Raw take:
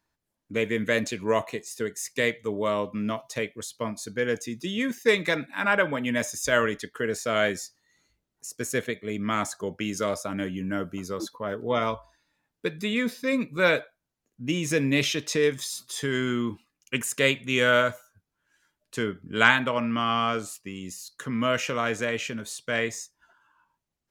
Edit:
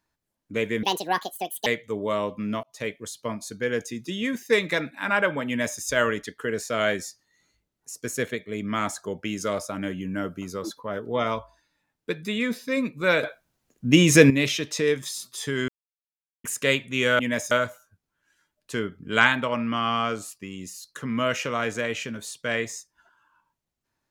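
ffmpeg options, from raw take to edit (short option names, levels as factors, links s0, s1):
-filter_complex "[0:a]asplit=10[s0][s1][s2][s3][s4][s5][s6][s7][s8][s9];[s0]atrim=end=0.834[s10];[s1]atrim=start=0.83:end=2.22,asetpts=PTS-STARTPTS,asetrate=73647,aresample=44100[s11];[s2]atrim=start=2.216:end=3.19,asetpts=PTS-STARTPTS,afade=t=out:st=0.97:d=0.004:c=hsin[s12];[s3]atrim=start=3.19:end=13.792,asetpts=PTS-STARTPTS,afade=t=in:d=0.25[s13];[s4]atrim=start=13.788:end=14.862,asetpts=PTS-STARTPTS,volume=3.55[s14];[s5]atrim=start=14.858:end=16.24,asetpts=PTS-STARTPTS,afade=t=out:st=1.378:d=0.004:c=hsin[s15];[s6]atrim=start=16.24:end=17,asetpts=PTS-STARTPTS,volume=0[s16];[s7]atrim=start=17:end=17.752,asetpts=PTS-STARTPTS,afade=t=in:d=0.004:c=hsin[s17];[s8]atrim=start=6.028:end=6.352[s18];[s9]atrim=start=17.748[s19];[s10][s11]acrossfade=d=0.004:c1=hsin:c2=hsin[s20];[s12][s13]concat=n=2:v=0:a=1[s21];[s20][s21]acrossfade=d=0.004:c1=hsin:c2=hsin[s22];[s22][s14]acrossfade=d=0.004:c1=hsin:c2=hsin[s23];[s15][s16][s17]concat=n=3:v=0:a=1[s24];[s23][s24]acrossfade=d=0.004:c1=hsin:c2=hsin[s25];[s25][s18]acrossfade=d=0.004:c1=hsin:c2=hsin[s26];[s26][s19]acrossfade=d=0.004:c1=hsin:c2=hsin"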